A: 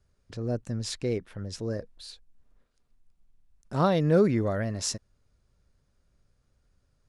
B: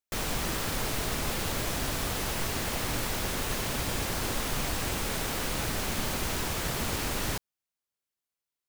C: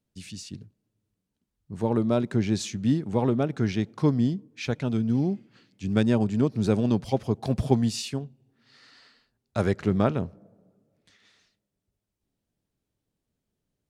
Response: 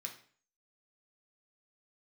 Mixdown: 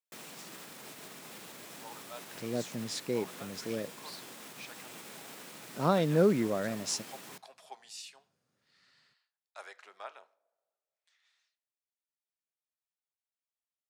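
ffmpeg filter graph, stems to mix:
-filter_complex "[0:a]adelay=2050,volume=-3dB[link_01];[1:a]alimiter=level_in=4dB:limit=-24dB:level=0:latency=1:release=220,volume=-4dB,volume=-9.5dB,asplit=2[link_02][link_03];[link_03]volume=-10dB[link_04];[2:a]highpass=frequency=730:width=0.5412,highpass=frequency=730:width=1.3066,volume=-13.5dB,asplit=2[link_05][link_06];[link_06]volume=-7.5dB[link_07];[3:a]atrim=start_sample=2205[link_08];[link_04][link_07]amix=inputs=2:normalize=0[link_09];[link_09][link_08]afir=irnorm=-1:irlink=0[link_10];[link_01][link_02][link_05][link_10]amix=inputs=4:normalize=0,highpass=frequency=150:width=0.5412,highpass=frequency=150:width=1.3066"

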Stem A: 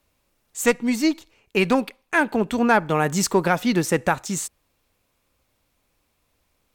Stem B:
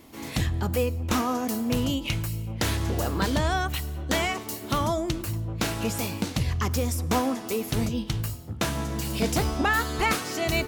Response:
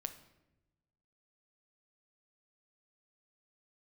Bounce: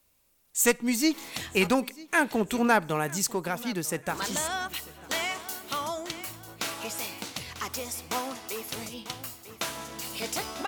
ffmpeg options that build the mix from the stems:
-filter_complex "[0:a]crystalizer=i=2:c=0,volume=-6dB,afade=type=out:start_time=2.72:duration=0.48:silence=0.473151,asplit=3[link_01][link_02][link_03];[link_02]volume=-16.5dB[link_04];[link_03]volume=-20.5dB[link_05];[1:a]highpass=frequency=990:poles=1,bandreject=frequency=1700:width=21,adelay=1000,volume=-1.5dB,asplit=3[link_06][link_07][link_08];[link_06]atrim=end=1.72,asetpts=PTS-STARTPTS,afade=type=out:start_time=1.716:duration=0.004:curve=hsin[link_09];[link_07]atrim=start=1.72:end=4.09,asetpts=PTS-STARTPTS,volume=0[link_10];[link_08]atrim=start=4.09,asetpts=PTS-STARTPTS,afade=type=in:duration=0.004:curve=hsin[link_11];[link_09][link_10][link_11]concat=n=3:v=0:a=1,asplit=2[link_12][link_13];[link_13]volume=-13dB[link_14];[2:a]atrim=start_sample=2205[link_15];[link_04][link_15]afir=irnorm=-1:irlink=0[link_16];[link_05][link_14]amix=inputs=2:normalize=0,aecho=0:1:945|1890|2835|3780|4725:1|0.38|0.144|0.0549|0.0209[link_17];[link_01][link_12][link_16][link_17]amix=inputs=4:normalize=0"

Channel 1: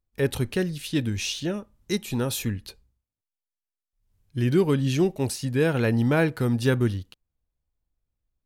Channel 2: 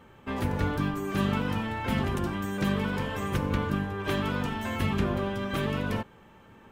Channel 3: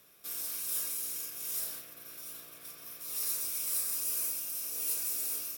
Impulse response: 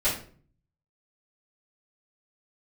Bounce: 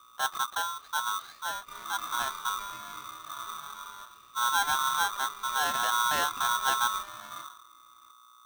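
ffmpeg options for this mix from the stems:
-filter_complex "[0:a]lowshelf=frequency=100:gain=-6.5,aeval=exprs='val(0)+0.00141*(sin(2*PI*60*n/s)+sin(2*PI*2*60*n/s)/2+sin(2*PI*3*60*n/s)/3+sin(2*PI*4*60*n/s)/4+sin(2*PI*5*60*n/s)/5)':channel_layout=same,volume=-10dB,asplit=2[link_01][link_02];[1:a]lowpass=frequency=1200:width=0.5412,lowpass=frequency=1200:width=1.3066,bandreject=frequency=48.39:width_type=h:width=4,bandreject=frequency=96.78:width_type=h:width=4,bandreject=frequency=145.17:width_type=h:width=4,adelay=1400,volume=-11dB,asplit=3[link_03][link_04][link_05];[link_03]atrim=end=4.02,asetpts=PTS-STARTPTS,afade=type=out:start_time=4.016:duration=0.004:curve=hsin[link_06];[link_04]atrim=start=4.02:end=4.62,asetpts=PTS-STARTPTS,volume=0[link_07];[link_05]atrim=start=4.62,asetpts=PTS-STARTPTS,afade=type=in:duration=0.004:curve=hsin[link_08];[link_06][link_07][link_08]concat=n=3:v=0:a=1,asplit=2[link_09][link_10];[link_10]volume=-22.5dB[link_11];[2:a]volume=1dB[link_12];[link_02]apad=whole_len=245910[link_13];[link_12][link_13]sidechaincompress=threshold=-48dB:ratio=8:attack=16:release=487[link_14];[link_09][link_14]amix=inputs=2:normalize=0,highpass=1200,acompressor=threshold=-36dB:ratio=6,volume=0dB[link_15];[3:a]atrim=start_sample=2205[link_16];[link_11][link_16]afir=irnorm=-1:irlink=0[link_17];[link_01][link_15][link_17]amix=inputs=3:normalize=0,lowpass=frequency=2700:width=0.5412,lowpass=frequency=2700:width=1.3066,aemphasis=mode=reproduction:type=bsi,aeval=exprs='val(0)*sgn(sin(2*PI*1200*n/s))':channel_layout=same"

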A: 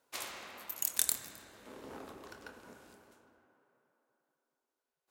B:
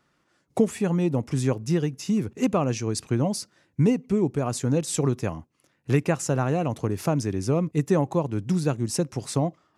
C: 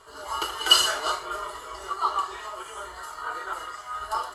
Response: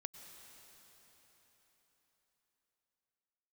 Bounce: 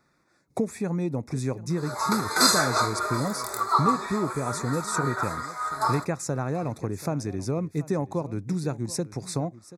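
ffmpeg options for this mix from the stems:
-filter_complex "[0:a]adelay=2450,volume=-5dB[link_01];[1:a]acompressor=threshold=-35dB:ratio=1.5,volume=1dB,asplit=3[link_02][link_03][link_04];[link_03]volume=-18dB[link_05];[2:a]highpass=120,adelay=1700,volume=1.5dB,asplit=3[link_06][link_07][link_08];[link_07]volume=-7dB[link_09];[link_08]volume=-20dB[link_10];[link_04]apad=whole_len=333032[link_11];[link_01][link_11]sidechaincompress=threshold=-40dB:ratio=8:attack=16:release=155[link_12];[3:a]atrim=start_sample=2205[link_13];[link_09][link_13]afir=irnorm=-1:irlink=0[link_14];[link_05][link_10]amix=inputs=2:normalize=0,aecho=0:1:732:1[link_15];[link_12][link_02][link_06][link_14][link_15]amix=inputs=5:normalize=0,asuperstop=centerf=3000:order=8:qfactor=3.2"

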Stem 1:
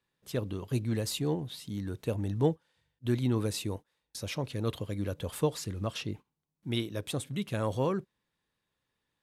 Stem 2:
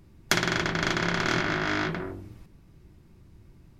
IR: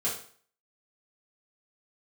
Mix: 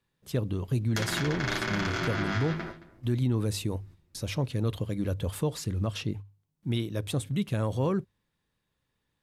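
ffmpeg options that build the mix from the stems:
-filter_complex "[0:a]lowshelf=frequency=180:gain=9.5,bandreject=frequency=50:width_type=h:width=6,bandreject=frequency=100:width_type=h:width=6,volume=1dB,asplit=2[link_01][link_02];[1:a]asplit=2[link_03][link_04];[link_04]adelay=8.5,afreqshift=-0.64[link_05];[link_03][link_05]amix=inputs=2:normalize=1,adelay=650,volume=0dB,asplit=2[link_06][link_07];[link_07]volume=-18dB[link_08];[link_02]apad=whole_len=196368[link_09];[link_06][link_09]sidechaingate=range=-12dB:threshold=-48dB:ratio=16:detection=peak[link_10];[link_08]aecho=0:1:221:1[link_11];[link_01][link_10][link_11]amix=inputs=3:normalize=0,alimiter=limit=-19dB:level=0:latency=1:release=83"

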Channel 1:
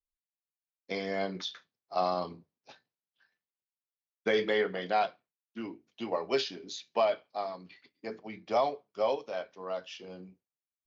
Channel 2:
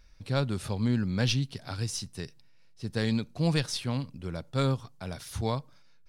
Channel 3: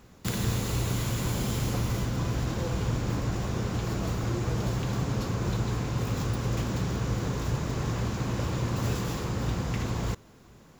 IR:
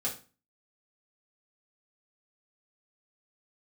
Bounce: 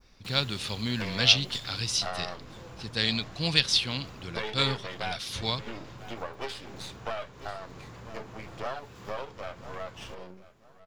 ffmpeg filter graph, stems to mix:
-filter_complex "[0:a]aeval=exprs='max(val(0),0)':channel_layout=same,adelay=100,volume=0.5dB,asplit=2[link_01][link_02];[link_02]volume=-18dB[link_03];[1:a]equalizer=frequency=3500:width_type=o:width=2.2:gain=13,volume=-5.5dB[link_04];[2:a]acompressor=threshold=-34dB:ratio=2,volume=-14dB[link_05];[link_01][link_05]amix=inputs=2:normalize=0,equalizer=frequency=1100:width=0.35:gain=6.5,acompressor=threshold=-36dB:ratio=2.5,volume=0dB[link_06];[link_03]aecho=0:1:992|1984|2976|3968:1|0.24|0.0576|0.0138[link_07];[link_04][link_06][link_07]amix=inputs=3:normalize=0,adynamicequalizer=threshold=0.00562:dfrequency=3300:dqfactor=0.73:tfrequency=3300:tqfactor=0.73:attack=5:release=100:ratio=0.375:range=3:mode=boostabove:tftype=bell"

